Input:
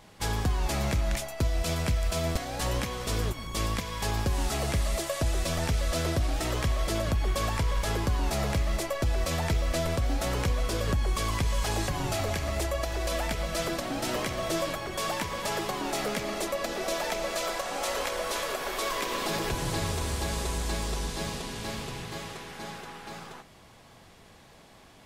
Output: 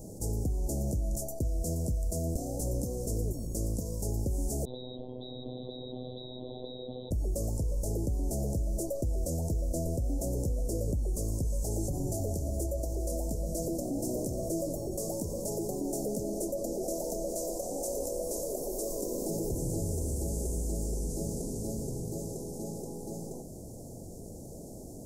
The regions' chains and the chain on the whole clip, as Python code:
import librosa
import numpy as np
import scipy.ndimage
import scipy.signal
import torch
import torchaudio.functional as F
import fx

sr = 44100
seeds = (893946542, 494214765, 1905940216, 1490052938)

y = fx.chain(x, sr, fx.freq_invert(carrier_hz=3800),
    fx.robotise(hz=126.0), at=(4.65, 7.11))
y = scipy.signal.sosfilt(scipy.signal.cheby2(4, 60, [1300.0, 3100.0], 'bandstop', fs=sr, output='sos'), y)
y = fx.peak_eq(y, sr, hz=300.0, db=2.5, octaves=0.43)
y = fx.env_flatten(y, sr, amount_pct=50)
y = F.gain(torch.from_numpy(y), -5.0).numpy()